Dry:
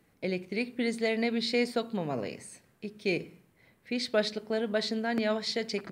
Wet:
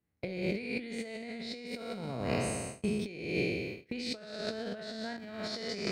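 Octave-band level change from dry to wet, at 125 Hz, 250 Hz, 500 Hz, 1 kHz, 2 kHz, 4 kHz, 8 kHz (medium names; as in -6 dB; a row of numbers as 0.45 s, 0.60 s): +2.5 dB, -4.0 dB, -6.0 dB, -5.0 dB, -4.5 dB, -5.5 dB, +1.0 dB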